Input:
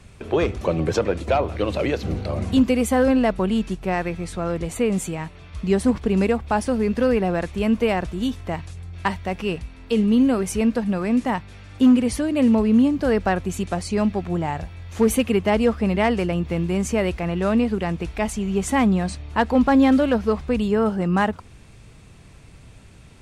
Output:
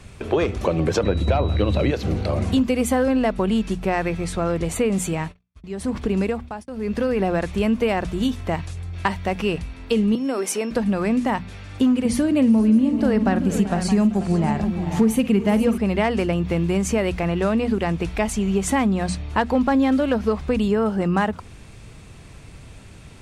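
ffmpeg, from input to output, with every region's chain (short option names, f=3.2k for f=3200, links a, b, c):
-filter_complex "[0:a]asettb=1/sr,asplit=3[a][b][c];[a]atrim=end=1.034[d];[b]atrim=start=1.03:end=1.91,asetpts=PTS-STARTPTS,afade=t=in:d=0.004:c=qsin,afade=t=out:st=0.876:d=0.004:c=qsin,bass=f=250:g=10,treble=f=4k:g=-4,aeval=exprs='val(0)+0.01*sin(2*PI*3900*n/s)':c=same[e];[c]atrim=start=1.906[f];[d][e]acrossfade=d=0.004:c1=hsin:c2=qsin[g];[g][f]acrossfade=d=0.004:c1=qsin:c2=hsin,asettb=1/sr,asplit=3[h][i][j];[h]atrim=end=5.134[k];[i]atrim=start=5.13:end=7.19,asetpts=PTS-STARTPTS,afade=t=in:d=0.004:c=qsin,afade=t=out:st=2.056:d=0.004:c=qsin,acompressor=threshold=-22dB:ratio=2:attack=3.2:release=140:knee=1:detection=peak,tremolo=f=1:d=0.81,agate=range=-42dB:threshold=-44dB:ratio=16:release=100:detection=peak[l];[j]atrim=start=7.186[m];[k][l]acrossfade=d=0.004:c1=hsin:c2=qsin[n];[n][m]acrossfade=d=0.004:c1=qsin:c2=hsin,asettb=1/sr,asplit=3[o][p][q];[o]atrim=end=10.154[r];[p]atrim=start=10.15:end=10.71,asetpts=PTS-STARTPTS,afade=t=in:d=0.004:c=qsin,afade=t=out:st=0.556:d=0.004:c=qsin,acompressor=threshold=-20dB:ratio=6:attack=3.2:release=140:knee=1:detection=peak,aeval=exprs='val(0)+0.00251*sin(2*PI*5400*n/s)':c=same,highpass=f=280:w=0.5412,highpass=f=280:w=1.3066[s];[q]atrim=start=10.706[t];[r][s]acrossfade=d=0.004:c1=hsin:c2=qsin[u];[u][t]acrossfade=d=0.004:c1=qsin:c2=hsin,asettb=1/sr,asplit=3[v][w][x];[v]atrim=end=12.054[y];[w]atrim=start=12.05:end=15.78,asetpts=PTS-STARTPTS,afade=t=in:d=0.004:c=qsin,afade=t=out:st=3.726:d=0.004:c=qsin,equalizer=f=200:t=o:w=0.8:g=9.5,aecho=1:1:50|385|431|487|618|619:0.178|0.133|0.133|0.211|0.126|0.119,atrim=end_sample=164493[z];[x]atrim=start=15.776[aa];[y][z]acrossfade=d=0.004:c1=hsin:c2=qsin[ab];[ab][aa]acrossfade=d=0.004:c1=qsin:c2=hsin,bandreject=f=60:t=h:w=6,bandreject=f=120:t=h:w=6,bandreject=f=180:t=h:w=6,bandreject=f=240:t=h:w=6,acompressor=threshold=-22dB:ratio=3,volume=4.5dB"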